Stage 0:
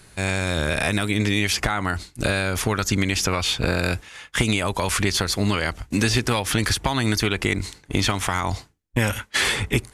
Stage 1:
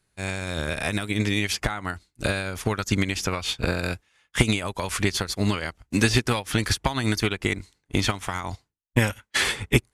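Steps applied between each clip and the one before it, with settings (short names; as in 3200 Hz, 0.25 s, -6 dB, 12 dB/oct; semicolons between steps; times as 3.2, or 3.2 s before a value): upward expander 2.5:1, over -34 dBFS; gain +3.5 dB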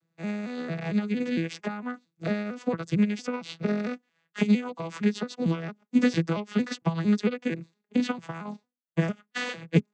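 arpeggiated vocoder major triad, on E3, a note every 0.227 s; gain -1 dB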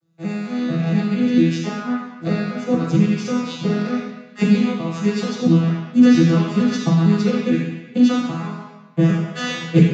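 reverb RT60 1.1 s, pre-delay 3 ms, DRR -10 dB; gain -2 dB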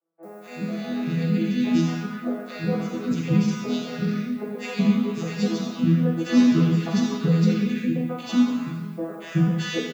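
added noise violet -58 dBFS; three bands offset in time mids, highs, lows 0.23/0.37 s, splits 360/1200 Hz; gain -3.5 dB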